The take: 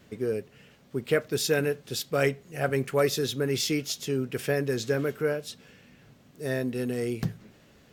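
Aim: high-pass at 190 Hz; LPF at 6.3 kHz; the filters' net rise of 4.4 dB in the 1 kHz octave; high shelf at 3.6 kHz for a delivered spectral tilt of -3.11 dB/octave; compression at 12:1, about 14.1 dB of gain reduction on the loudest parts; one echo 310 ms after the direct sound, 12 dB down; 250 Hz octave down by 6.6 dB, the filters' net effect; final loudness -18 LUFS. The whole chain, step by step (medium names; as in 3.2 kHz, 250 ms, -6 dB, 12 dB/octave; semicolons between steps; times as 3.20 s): high-pass 190 Hz; low-pass 6.3 kHz; peaking EQ 250 Hz -7.5 dB; peaking EQ 1 kHz +7 dB; treble shelf 3.6 kHz +4 dB; compression 12:1, threshold -33 dBFS; delay 310 ms -12 dB; trim +20 dB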